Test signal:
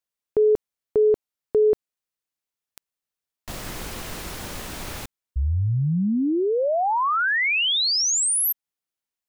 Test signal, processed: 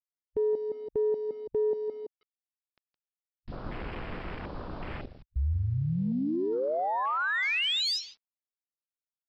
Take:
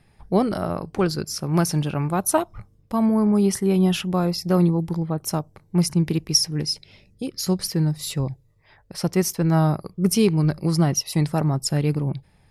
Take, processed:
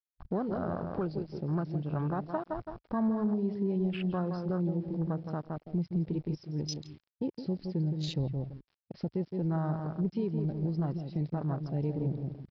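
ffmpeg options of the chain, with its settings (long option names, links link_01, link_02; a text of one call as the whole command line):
ffmpeg -i in.wav -filter_complex "[0:a]acontrast=31,adynamicequalizer=threshold=0.02:dfrequency=2900:dqfactor=1.2:tfrequency=2900:tqfactor=1.2:attack=5:release=100:ratio=0.375:range=1.5:mode=boostabove:tftype=bell,asplit=2[link_01][link_02];[link_02]adelay=166,lowpass=frequency=2100:poles=1,volume=-7dB,asplit=2[link_03][link_04];[link_04]adelay=166,lowpass=frequency=2100:poles=1,volume=0.29,asplit=2[link_05][link_06];[link_06]adelay=166,lowpass=frequency=2100:poles=1,volume=0.29,asplit=2[link_07][link_08];[link_08]adelay=166,lowpass=frequency=2100:poles=1,volume=0.29[link_09];[link_01][link_03][link_05][link_07][link_09]amix=inputs=5:normalize=0,acompressor=threshold=-16dB:ratio=8:attack=0.25:release=803:knee=1:detection=peak,aresample=11025,aeval=exprs='val(0)*gte(abs(val(0)),0.0158)':channel_layout=same,aresample=44100,afwtdn=0.0282,volume=-8dB" out.wav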